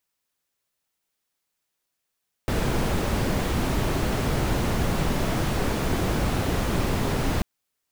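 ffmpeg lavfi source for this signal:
-f lavfi -i "anoisesrc=c=brown:a=0.313:d=4.94:r=44100:seed=1"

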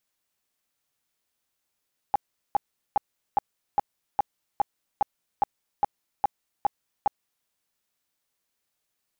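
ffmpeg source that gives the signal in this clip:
-f lavfi -i "aevalsrc='0.15*sin(2*PI*819*mod(t,0.41))*lt(mod(t,0.41),13/819)':d=5.33:s=44100"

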